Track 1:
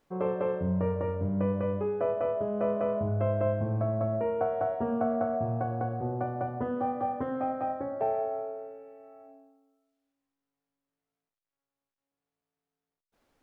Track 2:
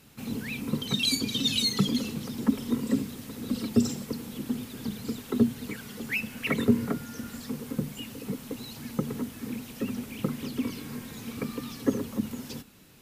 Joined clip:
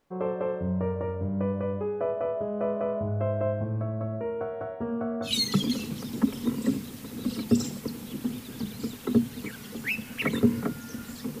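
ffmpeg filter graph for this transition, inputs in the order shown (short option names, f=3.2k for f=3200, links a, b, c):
-filter_complex "[0:a]asettb=1/sr,asplit=3[a][b][c];[a]atrim=end=3.644[d];[b]atrim=start=3.64:end=5.34,asetpts=PTS-STARTPTS,afade=t=in:d=0.004:c=qsin,afade=t=out:st=1.696:d=0.004:c=qsin,equalizer=f=750:w=2.9:g=-10.5[e];[c]atrim=start=5.336[f];[d][e]acrossfade=d=0.004:c1=hsin:c2=qsin[g];[g][f]acrossfade=d=0.004:c1=qsin:c2=hsin,apad=whole_dur=11.4,atrim=end=11.4,atrim=end=5.34,asetpts=PTS-STARTPTS[h];[1:a]atrim=start=1.47:end=7.65,asetpts=PTS-STARTPTS[i];[h][i]acrossfade=d=0.12:c1=tri:c2=tri"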